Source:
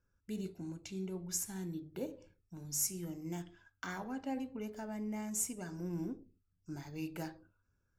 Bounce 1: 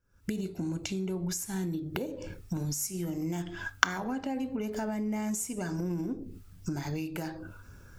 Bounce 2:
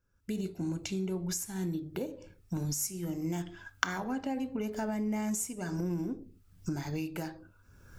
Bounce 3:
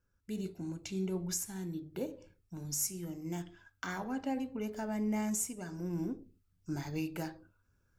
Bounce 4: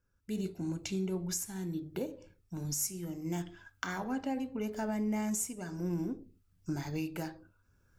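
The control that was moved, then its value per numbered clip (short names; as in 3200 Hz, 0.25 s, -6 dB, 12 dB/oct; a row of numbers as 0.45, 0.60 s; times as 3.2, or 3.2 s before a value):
recorder AGC, rising by: 84, 34, 5.2, 13 dB/s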